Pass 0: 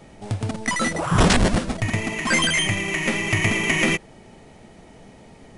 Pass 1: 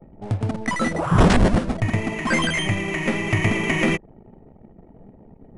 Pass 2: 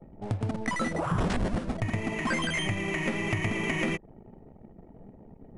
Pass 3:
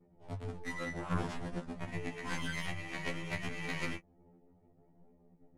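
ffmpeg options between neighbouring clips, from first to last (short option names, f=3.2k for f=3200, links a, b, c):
-af "anlmdn=0.1,highshelf=f=2.3k:g=-11.5,volume=2.5dB"
-af "acompressor=threshold=-23dB:ratio=4,volume=-3dB"
-af "flanger=delay=16.5:depth=6.8:speed=0.58,aeval=exprs='0.126*(cos(1*acos(clip(val(0)/0.126,-1,1)))-cos(1*PI/2))+0.0316*(cos(3*acos(clip(val(0)/0.126,-1,1)))-cos(3*PI/2))+0.0141*(cos(4*acos(clip(val(0)/0.126,-1,1)))-cos(4*PI/2))+0.00501*(cos(6*acos(clip(val(0)/0.126,-1,1)))-cos(6*PI/2))':c=same,afftfilt=real='re*2*eq(mod(b,4),0)':imag='im*2*eq(mod(b,4),0)':win_size=2048:overlap=0.75,volume=3dB"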